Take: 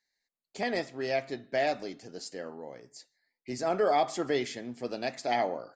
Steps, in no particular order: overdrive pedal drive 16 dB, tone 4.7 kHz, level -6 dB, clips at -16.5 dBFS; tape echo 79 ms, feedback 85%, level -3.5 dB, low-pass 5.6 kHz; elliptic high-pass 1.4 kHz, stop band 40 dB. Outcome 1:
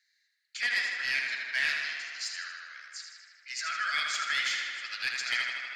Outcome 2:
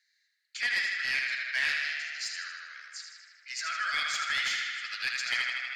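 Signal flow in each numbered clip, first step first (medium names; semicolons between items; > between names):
elliptic high-pass > overdrive pedal > tape echo; elliptic high-pass > tape echo > overdrive pedal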